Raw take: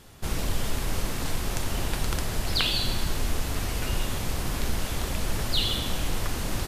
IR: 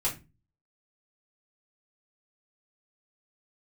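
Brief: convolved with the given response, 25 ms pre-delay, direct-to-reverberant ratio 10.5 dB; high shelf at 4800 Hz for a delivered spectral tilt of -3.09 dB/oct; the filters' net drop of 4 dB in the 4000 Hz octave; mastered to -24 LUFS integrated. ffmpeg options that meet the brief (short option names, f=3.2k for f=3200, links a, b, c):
-filter_complex "[0:a]equalizer=f=4k:t=o:g=-9,highshelf=f=4.8k:g=8.5,asplit=2[a][b];[1:a]atrim=start_sample=2205,adelay=25[c];[b][c]afir=irnorm=-1:irlink=0,volume=-17dB[d];[a][d]amix=inputs=2:normalize=0,volume=4.5dB"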